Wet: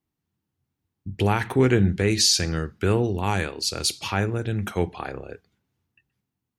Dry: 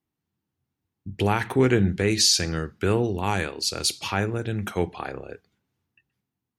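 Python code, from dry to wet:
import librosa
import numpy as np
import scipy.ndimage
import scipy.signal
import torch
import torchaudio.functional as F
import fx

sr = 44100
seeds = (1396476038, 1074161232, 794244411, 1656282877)

y = fx.low_shelf(x, sr, hz=93.0, db=6.0)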